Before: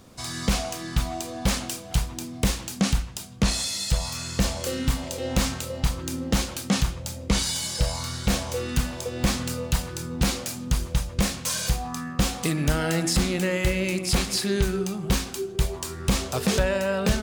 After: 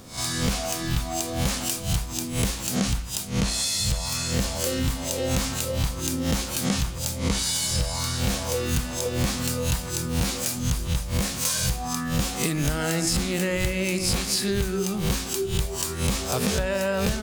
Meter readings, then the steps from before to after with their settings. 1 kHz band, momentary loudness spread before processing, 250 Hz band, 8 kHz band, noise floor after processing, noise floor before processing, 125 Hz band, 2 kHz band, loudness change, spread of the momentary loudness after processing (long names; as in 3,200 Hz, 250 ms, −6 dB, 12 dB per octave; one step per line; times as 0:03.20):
0.0 dB, 5 LU, −0.5 dB, +3.5 dB, −32 dBFS, −39 dBFS, +0.5 dB, 0.0 dB, +1.0 dB, 4 LU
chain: peak hold with a rise ahead of every peak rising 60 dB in 0.34 s
high-shelf EQ 7,200 Hz +4.5 dB
downward compressor 5 to 1, threshold −25 dBFS, peak gain reduction 9.5 dB
level +3.5 dB